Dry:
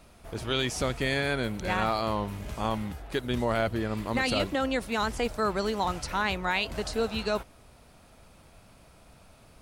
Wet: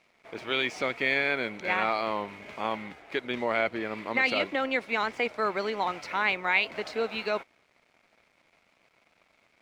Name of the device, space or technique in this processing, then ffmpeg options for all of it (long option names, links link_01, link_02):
pocket radio on a weak battery: -af "highpass=290,lowpass=3900,aeval=exprs='sgn(val(0))*max(abs(val(0))-0.00112,0)':channel_layout=same,equalizer=frequency=2200:width_type=o:width=0.33:gain=11"